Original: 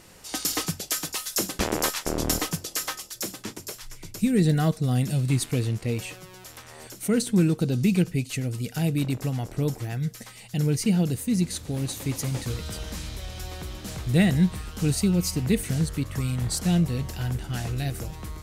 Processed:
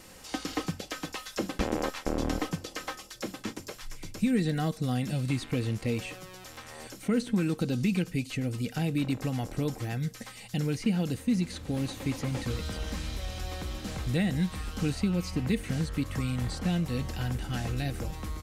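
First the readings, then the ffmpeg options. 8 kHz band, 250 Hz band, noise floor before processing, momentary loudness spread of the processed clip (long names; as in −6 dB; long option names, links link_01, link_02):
−12.5 dB, −4.0 dB, −47 dBFS, 10 LU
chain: -filter_complex "[0:a]acrossover=split=750|3300[link_01][link_02][link_03];[link_01]acompressor=threshold=-25dB:ratio=4[link_04];[link_02]acompressor=threshold=-38dB:ratio=4[link_05];[link_03]acompressor=threshold=-44dB:ratio=4[link_06];[link_04][link_05][link_06]amix=inputs=3:normalize=0,aecho=1:1:3.8:0.31,acrossover=split=6900[link_07][link_08];[link_08]acompressor=threshold=-51dB:ratio=4:attack=1:release=60[link_09];[link_07][link_09]amix=inputs=2:normalize=0"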